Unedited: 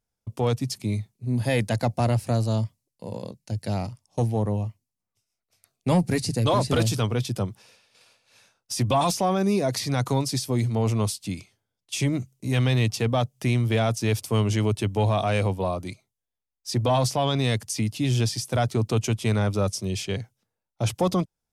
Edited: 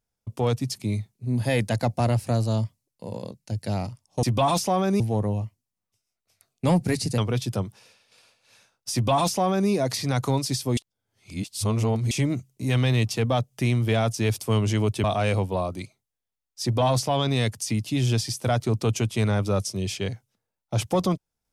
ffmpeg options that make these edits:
-filter_complex "[0:a]asplit=7[a][b][c][d][e][f][g];[a]atrim=end=4.232[h];[b]atrim=start=8.758:end=9.532[i];[c]atrim=start=4.228:end=6.412[j];[d]atrim=start=7.008:end=10.602[k];[e]atrim=start=10.598:end=11.942,asetpts=PTS-STARTPTS,areverse[l];[f]atrim=start=11.938:end=14.872[m];[g]atrim=start=15.118[n];[h][i]acrossfade=d=0.004:c1=hsin:c2=hsin[o];[o][j]acrossfade=d=0.004:c1=hsin:c2=hsin[p];[p][k]acrossfade=d=0.004:c1=hsin:c2=hsin[q];[q][l]acrossfade=d=0.004:c1=hsin:c2=hsin[r];[r][m]acrossfade=d=0.004:c1=hsin:c2=hsin[s];[s][n]acrossfade=d=0.004:c1=hsin:c2=hsin"

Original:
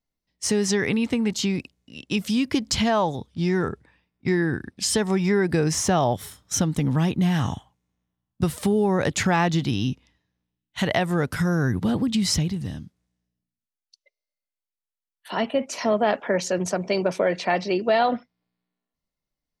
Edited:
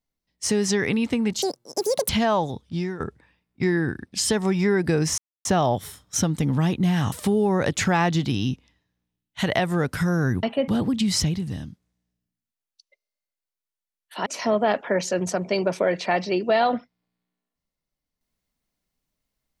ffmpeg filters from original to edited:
-filter_complex "[0:a]asplit=9[a][b][c][d][e][f][g][h][i];[a]atrim=end=1.424[j];[b]atrim=start=1.42:end=2.74,asetpts=PTS-STARTPTS,asetrate=86877,aresample=44100,atrim=end_sample=29549,asetpts=PTS-STARTPTS[k];[c]atrim=start=2.736:end=3.65,asetpts=PTS-STARTPTS,afade=t=out:st=0.594:d=0.32:silence=0.158489[l];[d]atrim=start=3.65:end=5.83,asetpts=PTS-STARTPTS,afade=t=in:d=0.004:c=hsin:silence=0.158489,afade=t=out:st=2.176:d=0.004:c=hsin,apad=pad_dur=0.27[m];[e]atrim=start=5.83:end=7.502,asetpts=PTS-STARTPTS,afade=t=in:d=0.004:c=hsin[n];[f]atrim=start=8.508:end=11.822[o];[g]atrim=start=15.398:end=15.652[p];[h]atrim=start=11.818:end=15.402[q];[i]atrim=start=15.648[r];[j][k]acrossfade=d=0.004:c1=hsin:c2=hsin[s];[l][m][n]concat=n=3:v=0:a=1[t];[s][t]acrossfade=d=0.004:c1=hsin:c2=hsin[u];[u][o]acrossfade=d=0.004:c1=hsin:c2=hsin[v];[v][p]acrossfade=d=0.004:c1=hsin:c2=hsin[w];[w][q]acrossfade=d=0.004:c1=hsin:c2=hsin[x];[x][r]acrossfade=d=0.004:c1=hsin:c2=hsin"

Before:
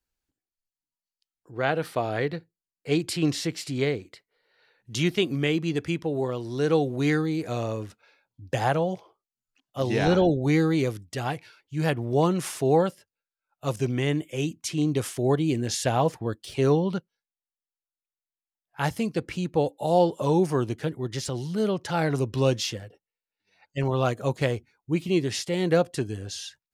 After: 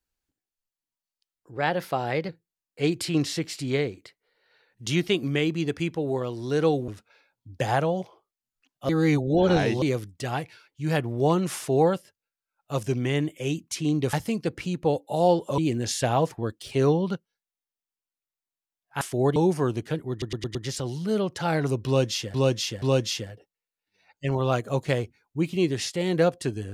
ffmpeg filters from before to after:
-filter_complex "[0:a]asplit=16[a][b][c][d][e][f][g][h][i][j][k][l][m][n][o][p];[a]atrim=end=1.574[q];[b]atrim=start=1.57:end=2.37,asetpts=PTS-STARTPTS,asetrate=48951,aresample=44100[r];[c]atrim=start=2.366:end=6.962[s];[d]atrim=start=7.808:end=9.822[t];[e]atrim=start=9.818:end=10.752,asetpts=PTS-STARTPTS,areverse[u];[f]atrim=start=10.748:end=15.062[v];[g]atrim=start=18.838:end=20.292[w];[h]atrim=start=15.408:end=18.842[x];[i]atrim=start=15.058:end=15.412[y];[j]atrim=start=20.288:end=21.152[z];[k]atrim=start=21.038:end=21.152[aa];[l]atrim=start=21.038:end=21.152[ab];[m]atrim=start=21.038:end=21.152[ac];[n]atrim=start=21.038:end=22.832[ad];[o]atrim=start=22.348:end=22.832[ae];[p]atrim=start=22.348[af];[q][r]acrossfade=d=0.004:c1=hsin:c2=hsin[ag];[ag][s]acrossfade=d=0.004:c1=hsin:c2=hsin[ah];[ah][t]acrossfade=d=0.004:c1=hsin:c2=hsin[ai];[ai][u]acrossfade=d=0.004:c1=hsin:c2=hsin[aj];[aj][v]acrossfade=d=0.004:c1=hsin:c2=hsin[ak];[ak][w]acrossfade=d=0.004:c1=hsin:c2=hsin[al];[al][x]acrossfade=d=0.004:c1=hsin:c2=hsin[am];[am][y]acrossfade=d=0.004:c1=hsin:c2=hsin[an];[an][z]acrossfade=d=0.004:c1=hsin:c2=hsin[ao];[ao][aa]acrossfade=d=0.004:c1=hsin:c2=hsin[ap];[ap][ab]acrossfade=d=0.004:c1=hsin:c2=hsin[aq];[aq][ac]acrossfade=d=0.004:c1=hsin:c2=hsin[ar];[ar][ad]acrossfade=d=0.004:c1=hsin:c2=hsin[as];[as][ae]acrossfade=d=0.004:c1=hsin:c2=hsin[at];[at][af]acrossfade=d=0.004:c1=hsin:c2=hsin"

